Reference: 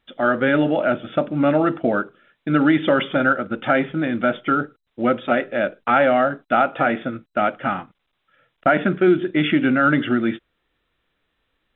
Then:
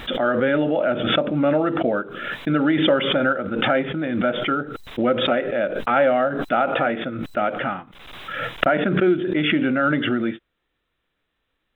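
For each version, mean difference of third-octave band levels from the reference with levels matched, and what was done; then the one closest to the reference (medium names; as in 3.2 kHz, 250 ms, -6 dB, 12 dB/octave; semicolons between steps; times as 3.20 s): 3.5 dB: dynamic bell 510 Hz, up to +5 dB, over -31 dBFS, Q 2.6; swell ahead of each attack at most 41 dB/s; trim -4 dB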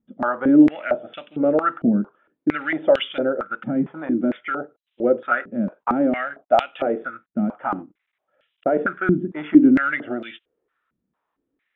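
7.5 dB: tilt EQ -1.5 dB/octave; step-sequenced band-pass 4.4 Hz 210–3000 Hz; trim +6.5 dB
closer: first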